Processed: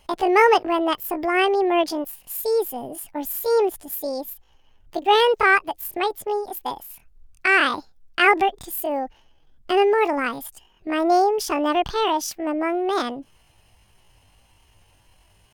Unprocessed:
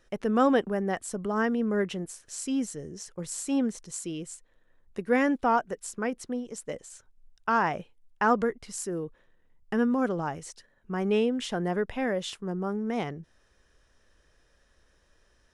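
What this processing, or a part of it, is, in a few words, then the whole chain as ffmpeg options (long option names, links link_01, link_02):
chipmunk voice: -filter_complex "[0:a]asettb=1/sr,asplit=3[link_01][link_02][link_03];[link_01]atrim=end=10.984[link_04];[link_02]atrim=start=10.98:end=11.42,asetpts=PTS-STARTPTS,afade=type=in:duration=0.004:curve=qsin,afade=type=out:start_time=0.436:duration=0.004:curve=qsin,equalizer=frequency=2400:width=2.9:gain=-12[link_05];[link_03]atrim=start=11.416[link_06];[link_04][link_05]acrossfade=duration=0.004:curve1=hsin:curve2=qsin[link_07];[link_07][link_06]acrossfade=duration=0.004:curve1=qsin:curve2=hsin,asetrate=74167,aresample=44100,atempo=0.594604,volume=7.5dB"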